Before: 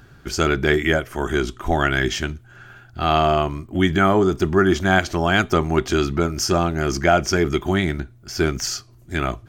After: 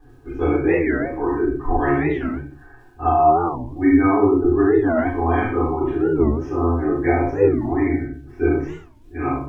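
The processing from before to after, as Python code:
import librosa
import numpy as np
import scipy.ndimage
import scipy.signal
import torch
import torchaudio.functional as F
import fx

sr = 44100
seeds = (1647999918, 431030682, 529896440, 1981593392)

p1 = scipy.signal.sosfilt(scipy.signal.butter(2, 1200.0, 'lowpass', fs=sr, output='sos'), x)
p2 = fx.spec_gate(p1, sr, threshold_db=-30, keep='strong')
p3 = fx.low_shelf(p2, sr, hz=97.0, db=-12.0)
p4 = fx.fixed_phaser(p3, sr, hz=930.0, stages=8)
p5 = p4 + 0.32 * np.pad(p4, (int(3.9 * sr / 1000.0), 0))[:len(p4)]
p6 = fx.tremolo_shape(p5, sr, shape='triangle', hz=5.0, depth_pct=60)
p7 = fx.comb_fb(p6, sr, f0_hz=140.0, decay_s=0.28, harmonics='all', damping=0.0, mix_pct=60)
p8 = fx.dmg_crackle(p7, sr, seeds[0], per_s=110.0, level_db=-62.0)
p9 = p8 + fx.room_early_taps(p8, sr, ms=(37, 71), db=(-4.0, -5.5), dry=0)
p10 = fx.room_shoebox(p9, sr, seeds[1], volume_m3=31.0, walls='mixed', distance_m=2.4)
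y = fx.record_warp(p10, sr, rpm=45.0, depth_cents=250.0)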